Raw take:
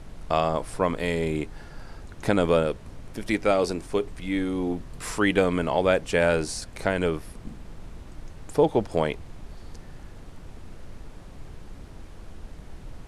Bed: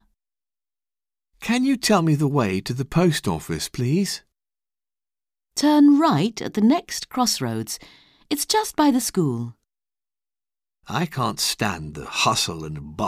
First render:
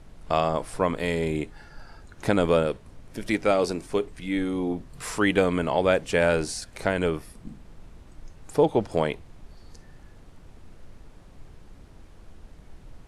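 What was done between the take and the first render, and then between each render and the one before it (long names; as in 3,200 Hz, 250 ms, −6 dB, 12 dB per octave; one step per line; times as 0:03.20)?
noise reduction from a noise print 6 dB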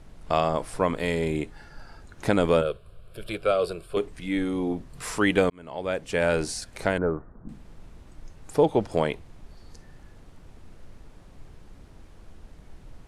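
0:02.61–0:03.97: phaser with its sweep stopped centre 1,300 Hz, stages 8
0:05.50–0:06.44: fade in
0:06.98–0:07.49: elliptic low-pass filter 1,500 Hz, stop band 60 dB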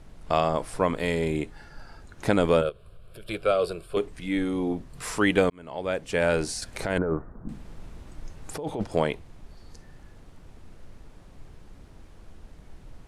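0:02.69–0:03.29: downward compressor 2.5 to 1, threshold −41 dBFS
0:06.62–0:08.84: compressor whose output falls as the input rises −27 dBFS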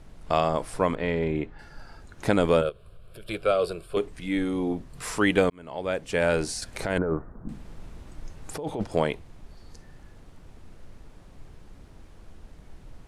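0:00.95–0:01.59: low-pass filter 2,600 Hz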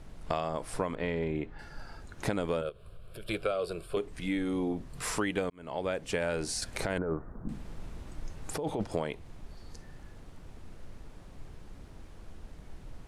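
downward compressor 6 to 1, threshold −28 dBFS, peak gain reduction 11.5 dB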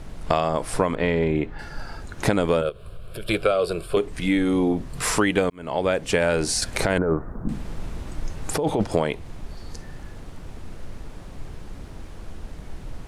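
level +10.5 dB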